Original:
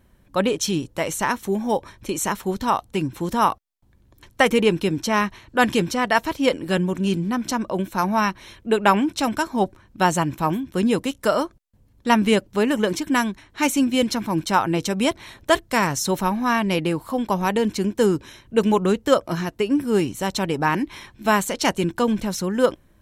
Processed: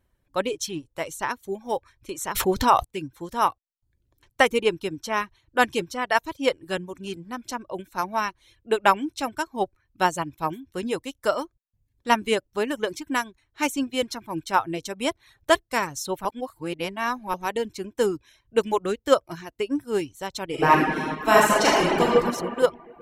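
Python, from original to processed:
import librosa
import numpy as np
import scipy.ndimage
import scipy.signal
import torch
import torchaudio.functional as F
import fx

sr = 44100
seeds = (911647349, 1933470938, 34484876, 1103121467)

y = fx.env_flatten(x, sr, amount_pct=70, at=(2.34, 2.83), fade=0.02)
y = fx.reverb_throw(y, sr, start_s=20.46, length_s=1.61, rt60_s=2.9, drr_db=-7.0)
y = fx.edit(y, sr, fx.reverse_span(start_s=16.25, length_s=1.09), tone=tone)
y = fx.dereverb_blind(y, sr, rt60_s=0.59)
y = fx.peak_eq(y, sr, hz=200.0, db=-8.0, octaves=0.64)
y = fx.upward_expand(y, sr, threshold_db=-35.0, expansion=1.5)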